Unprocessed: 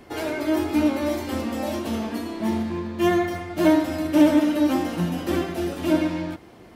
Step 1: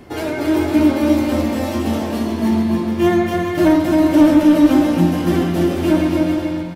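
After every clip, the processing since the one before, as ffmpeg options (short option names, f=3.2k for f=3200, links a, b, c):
-filter_complex "[0:a]equalizer=f=110:w=0.4:g=6,acontrast=77,asplit=2[a][b];[b]aecho=0:1:270|432|529.2|587.5|622.5:0.631|0.398|0.251|0.158|0.1[c];[a][c]amix=inputs=2:normalize=0,volume=-3.5dB"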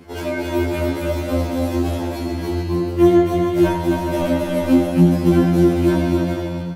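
-af "afftfilt=real='re*2*eq(mod(b,4),0)':imag='im*2*eq(mod(b,4),0)':win_size=2048:overlap=0.75"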